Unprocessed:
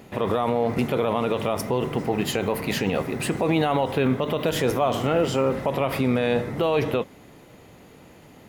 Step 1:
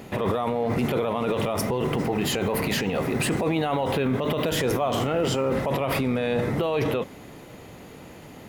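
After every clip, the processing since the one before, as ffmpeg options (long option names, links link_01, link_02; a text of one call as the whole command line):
ffmpeg -i in.wav -af "alimiter=limit=-21dB:level=0:latency=1:release=16,volume=5dB" out.wav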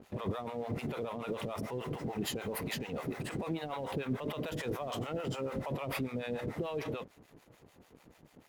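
ffmpeg -i in.wav -filter_complex "[0:a]acrossover=split=580[link_01][link_02];[link_01]aeval=exprs='val(0)*(1-1/2+1/2*cos(2*PI*6.8*n/s))':channel_layout=same[link_03];[link_02]aeval=exprs='val(0)*(1-1/2-1/2*cos(2*PI*6.8*n/s))':channel_layout=same[link_04];[link_03][link_04]amix=inputs=2:normalize=0,aeval=exprs='sgn(val(0))*max(abs(val(0))-0.00237,0)':channel_layout=same,volume=-7dB" out.wav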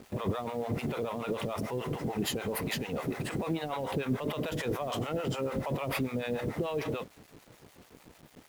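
ffmpeg -i in.wav -af "acrusher=bits=9:mix=0:aa=0.000001,volume=4dB" out.wav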